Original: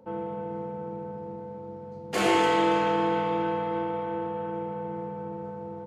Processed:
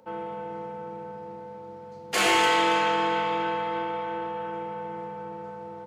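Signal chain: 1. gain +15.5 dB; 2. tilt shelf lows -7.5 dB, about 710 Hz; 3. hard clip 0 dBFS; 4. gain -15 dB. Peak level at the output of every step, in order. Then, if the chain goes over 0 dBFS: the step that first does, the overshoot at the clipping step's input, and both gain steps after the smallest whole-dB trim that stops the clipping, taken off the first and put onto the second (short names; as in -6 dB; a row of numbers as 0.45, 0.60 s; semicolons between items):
+5.5, +5.5, 0.0, -15.0 dBFS; step 1, 5.5 dB; step 1 +9.5 dB, step 4 -9 dB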